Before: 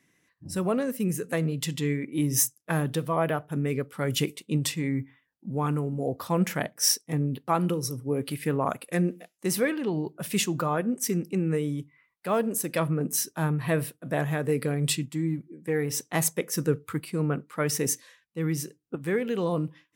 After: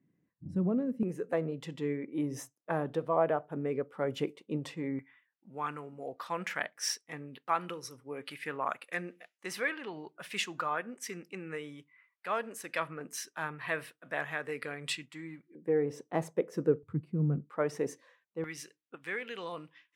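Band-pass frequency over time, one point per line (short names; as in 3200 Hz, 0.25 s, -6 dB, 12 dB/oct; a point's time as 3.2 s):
band-pass, Q 1
180 Hz
from 1.03 s 630 Hz
from 4.99 s 1800 Hz
from 15.55 s 470 Hz
from 16.83 s 130 Hz
from 17.5 s 650 Hz
from 18.44 s 2300 Hz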